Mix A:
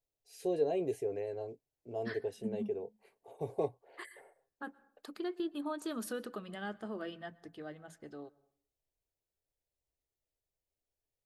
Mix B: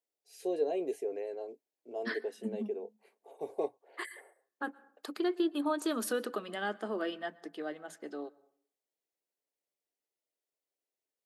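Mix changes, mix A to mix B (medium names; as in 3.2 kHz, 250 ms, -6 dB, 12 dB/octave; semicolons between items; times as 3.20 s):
second voice +7.0 dB; master: add high-pass 250 Hz 24 dB/octave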